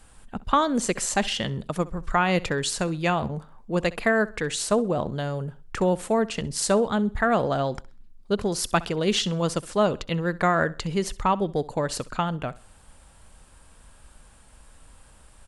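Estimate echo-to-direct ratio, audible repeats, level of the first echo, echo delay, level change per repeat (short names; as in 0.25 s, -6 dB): -19.5 dB, 2, -20.0 dB, 65 ms, -9.5 dB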